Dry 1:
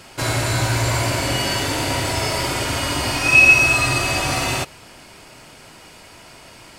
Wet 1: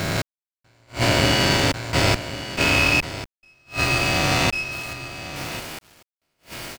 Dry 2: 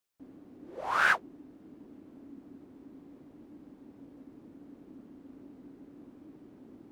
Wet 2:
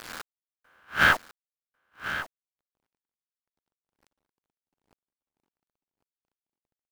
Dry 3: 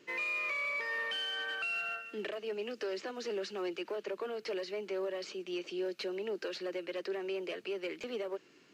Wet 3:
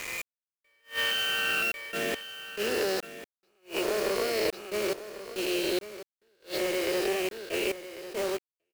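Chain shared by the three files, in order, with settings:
peak hold with a rise ahead of every peak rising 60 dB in 2.98 s
low-pass filter 5,600 Hz 12 dB per octave
mains-hum notches 60/120/180/240/300 Hz
dynamic equaliser 180 Hz, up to +6 dB, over −43 dBFS, Q 2.8
automatic gain control gain up to 10 dB
parametric band 990 Hz −4 dB 0.5 octaves
gate pattern "x..xxxxx.x..x" 70 BPM −60 dB
tube saturation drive 7 dB, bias 0.75
bit reduction 6 bits
on a send: single-tap delay 1,096 ms −13 dB
on the sum: level that may rise only so fast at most 260 dB per second

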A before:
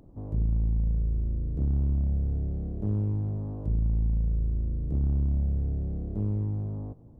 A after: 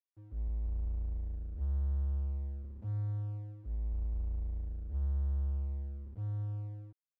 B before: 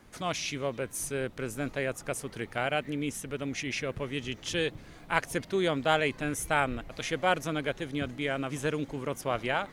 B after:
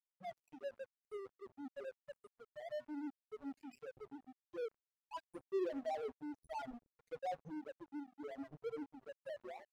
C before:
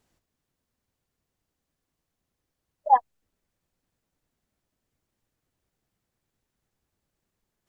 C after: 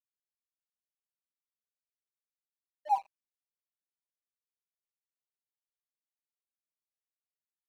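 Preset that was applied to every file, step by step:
spectral peaks only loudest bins 1
four-comb reverb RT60 0.38 s, combs from 29 ms, DRR 16.5 dB
dead-zone distortion −46 dBFS
level −2 dB

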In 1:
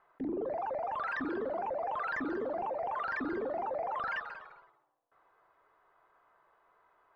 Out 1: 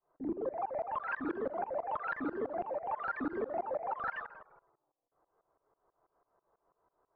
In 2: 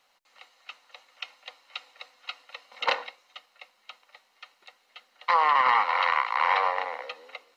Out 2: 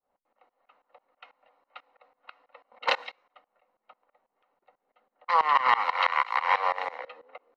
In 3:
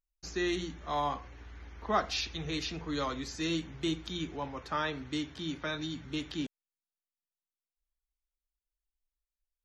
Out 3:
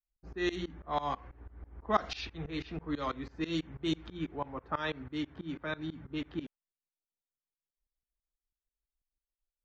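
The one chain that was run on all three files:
low-pass that shuts in the quiet parts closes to 620 Hz, open at −24 dBFS
shaped tremolo saw up 6.1 Hz, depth 95%
level +3 dB

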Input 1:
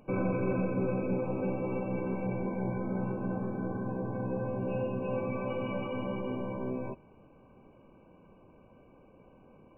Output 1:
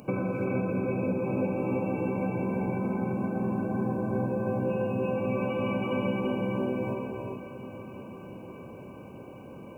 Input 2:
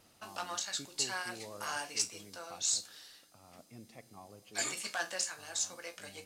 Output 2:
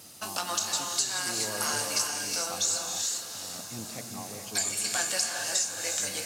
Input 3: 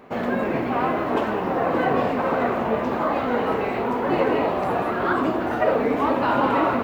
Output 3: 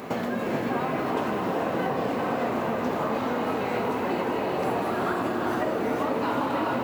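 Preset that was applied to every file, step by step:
high-pass filter 93 Hz
bass and treble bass +3 dB, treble +11 dB
downward compressor 8 to 1, threshold −36 dBFS
on a send: feedback delay with all-pass diffusion 800 ms, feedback 60%, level −14 dB
on the sum: reverb whose tail is shaped and stops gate 460 ms rising, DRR 2 dB
level +9 dB

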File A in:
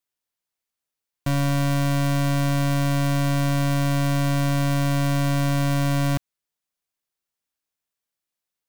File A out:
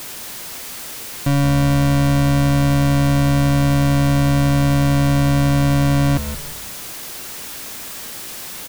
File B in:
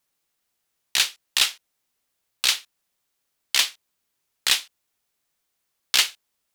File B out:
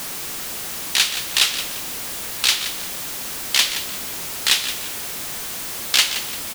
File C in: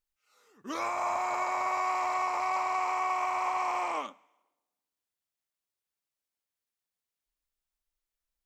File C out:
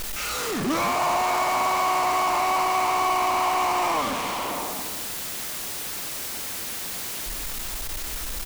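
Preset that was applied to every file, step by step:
converter with a step at zero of −24.5 dBFS
parametric band 240 Hz +3.5 dB 1.7 octaves
echo with shifted repeats 172 ms, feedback 34%, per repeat −65 Hz, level −11 dB
level +1.5 dB

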